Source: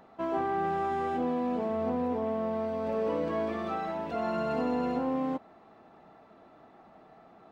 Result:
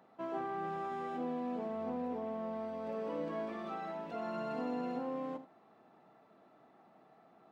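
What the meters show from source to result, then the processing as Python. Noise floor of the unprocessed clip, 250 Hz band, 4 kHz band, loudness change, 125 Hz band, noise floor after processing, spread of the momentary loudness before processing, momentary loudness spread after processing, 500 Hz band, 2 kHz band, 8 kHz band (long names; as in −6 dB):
−57 dBFS, −8.0 dB, −7.5 dB, −8.5 dB, −9.5 dB, −65 dBFS, 4 LU, 4 LU, −8.5 dB, −8.0 dB, can't be measured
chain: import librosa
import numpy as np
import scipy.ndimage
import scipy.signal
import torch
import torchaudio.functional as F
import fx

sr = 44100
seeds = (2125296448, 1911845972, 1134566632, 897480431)

p1 = scipy.signal.sosfilt(scipy.signal.butter(4, 110.0, 'highpass', fs=sr, output='sos'), x)
p2 = p1 + fx.room_early_taps(p1, sr, ms=(44, 78), db=(-16.5, -14.5), dry=0)
y = F.gain(torch.from_numpy(p2), -8.0).numpy()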